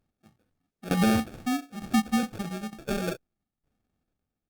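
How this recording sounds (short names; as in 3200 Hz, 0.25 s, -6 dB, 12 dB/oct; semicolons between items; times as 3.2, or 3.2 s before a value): tremolo saw down 1.1 Hz, depth 85%; aliases and images of a low sample rate 1000 Hz, jitter 0%; Opus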